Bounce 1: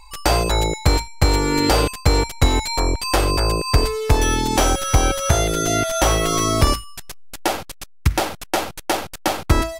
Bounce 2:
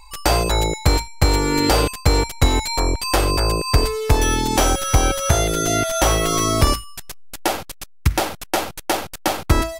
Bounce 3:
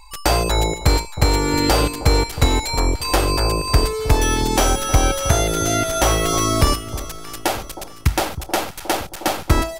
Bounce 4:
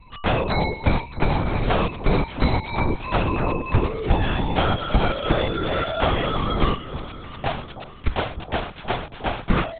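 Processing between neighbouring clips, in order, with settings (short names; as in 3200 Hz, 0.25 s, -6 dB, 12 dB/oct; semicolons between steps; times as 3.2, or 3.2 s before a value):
high shelf 12000 Hz +4.5 dB
echo with dull and thin repeats by turns 0.314 s, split 940 Hz, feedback 66%, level -12.5 dB
LPC vocoder at 8 kHz whisper; gain -3.5 dB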